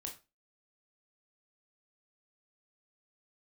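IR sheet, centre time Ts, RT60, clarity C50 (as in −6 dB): 17 ms, 0.30 s, 10.5 dB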